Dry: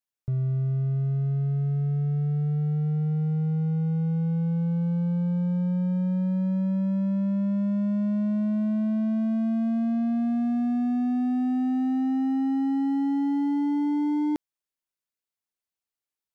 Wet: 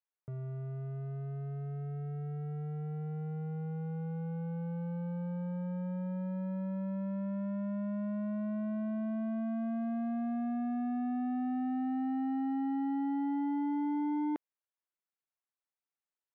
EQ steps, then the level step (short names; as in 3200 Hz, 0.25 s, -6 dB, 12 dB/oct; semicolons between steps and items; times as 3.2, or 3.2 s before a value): HPF 660 Hz 6 dB/oct; LPF 1800 Hz 12 dB/oct; air absorption 92 m; 0.0 dB